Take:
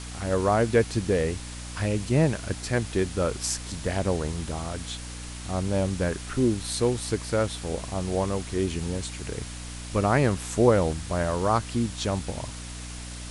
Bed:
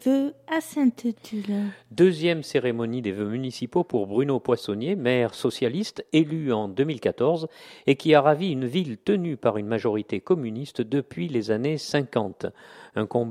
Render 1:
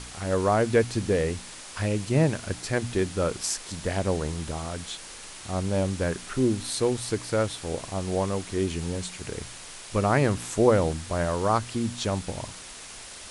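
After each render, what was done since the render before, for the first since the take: de-hum 60 Hz, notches 5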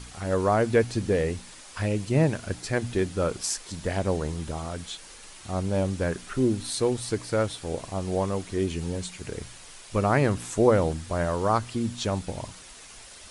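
denoiser 6 dB, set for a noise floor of -43 dBFS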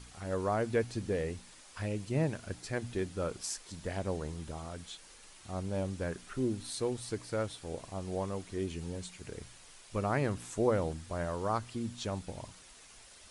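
gain -9 dB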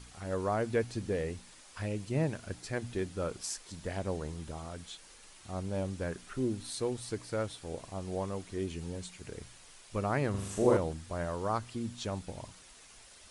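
10.3–10.77 flutter echo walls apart 6.9 m, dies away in 0.86 s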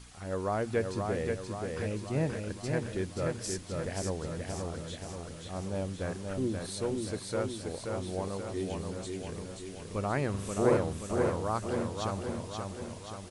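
feedback echo 0.529 s, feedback 56%, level -4 dB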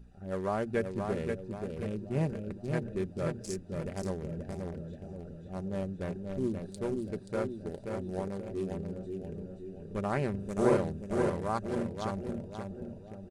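Wiener smoothing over 41 samples; comb 5.1 ms, depth 37%

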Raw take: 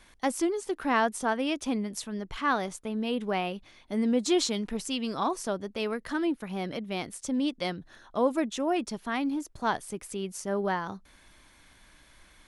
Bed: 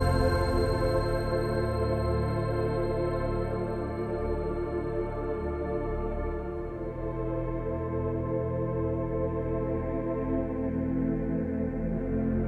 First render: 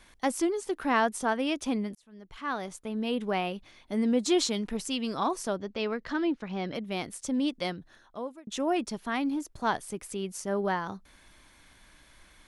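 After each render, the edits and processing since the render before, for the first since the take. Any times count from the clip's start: 1.95–3.08 fade in; 5.56–6.75 LPF 6100 Hz 24 dB/oct; 7.6–8.47 fade out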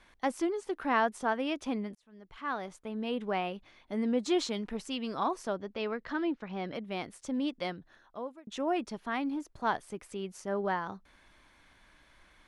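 LPF 2200 Hz 6 dB/oct; low shelf 450 Hz -5.5 dB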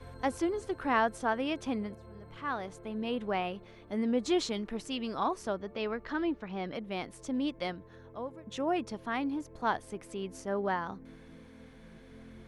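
add bed -23 dB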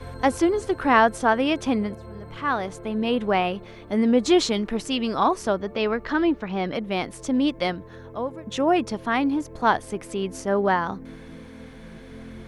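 gain +10.5 dB

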